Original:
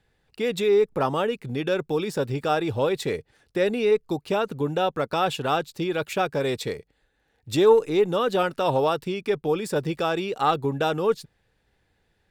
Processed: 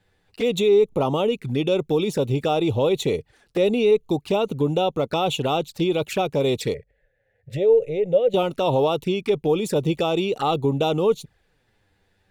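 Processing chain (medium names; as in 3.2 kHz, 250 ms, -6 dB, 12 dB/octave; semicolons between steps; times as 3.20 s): in parallel at 0 dB: peak limiter -19 dBFS, peak gain reduction 12 dB; on the sum: touch-sensitive flanger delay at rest 10.7 ms, full sweep at -19 dBFS; 6.74–8.34 s: FFT filter 130 Hz 0 dB, 310 Hz -18 dB, 550 Hz +8 dB, 1.1 kHz -25 dB, 1.8 kHz +1 dB, 4.1 kHz -19 dB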